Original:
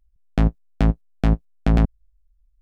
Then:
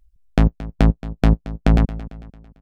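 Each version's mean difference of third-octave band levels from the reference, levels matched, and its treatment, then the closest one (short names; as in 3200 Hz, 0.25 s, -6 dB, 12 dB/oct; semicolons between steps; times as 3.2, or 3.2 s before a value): 2.0 dB: reverb removal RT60 1.2 s; in parallel at 0 dB: compressor, threshold -25 dBFS, peak gain reduction 12.5 dB; on the sum: feedback echo 0.224 s, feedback 43%, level -16.5 dB; gain +1 dB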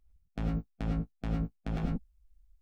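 6.0 dB: harmonic-percussive split percussive +6 dB; reverse; compressor 6:1, threshold -27 dBFS, peak gain reduction 16.5 dB; reverse; non-linear reverb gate 0.13 s rising, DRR -0.5 dB; gain -5 dB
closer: first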